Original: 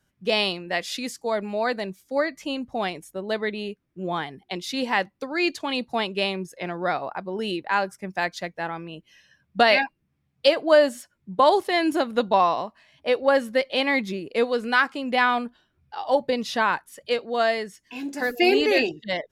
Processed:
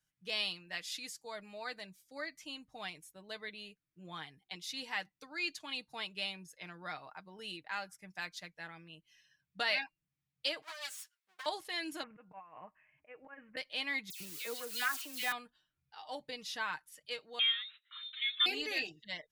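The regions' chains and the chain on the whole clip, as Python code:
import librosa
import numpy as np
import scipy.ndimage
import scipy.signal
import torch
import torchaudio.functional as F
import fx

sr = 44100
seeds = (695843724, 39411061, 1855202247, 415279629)

y = fx.chain(x, sr, fx.lower_of_two(delay_ms=8.3),
    fx.highpass(hz=1200.0, slope=12),
    fx.over_compress(threshold_db=-30.0, ratio=-1.0), at=(10.62, 11.46))
y = fx.chain(y, sr, fx.steep_lowpass(hz=2600.0, slope=72),
    fx.auto_swell(attack_ms=269.0),
    fx.over_compress(threshold_db=-30.0, ratio=-0.5), at=(12.03, 13.57))
y = fx.chain(y, sr, fx.crossing_spikes(level_db=-22.5),
    fx.dispersion(late='lows', ms=103.0, hz=2600.0), at=(14.1, 15.32))
y = fx.chain(y, sr, fx.resample_bad(factor=8, down='none', up='filtered'),
    fx.freq_invert(carrier_hz=3900), at=(17.39, 18.46))
y = fx.tone_stack(y, sr, knobs='5-5-5')
y = y + 0.47 * np.pad(y, (int(6.5 * sr / 1000.0), 0))[:len(y)]
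y = y * librosa.db_to_amplitude(-3.5)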